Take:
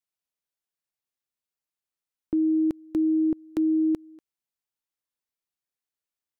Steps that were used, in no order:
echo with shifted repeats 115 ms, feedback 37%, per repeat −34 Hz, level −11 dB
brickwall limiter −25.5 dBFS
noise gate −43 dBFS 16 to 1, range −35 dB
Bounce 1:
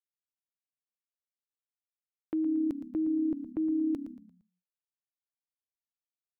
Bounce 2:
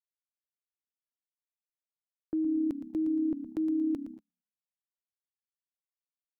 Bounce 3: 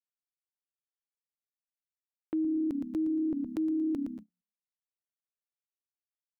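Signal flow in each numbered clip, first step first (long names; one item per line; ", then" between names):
noise gate, then brickwall limiter, then echo with shifted repeats
brickwall limiter, then echo with shifted repeats, then noise gate
echo with shifted repeats, then noise gate, then brickwall limiter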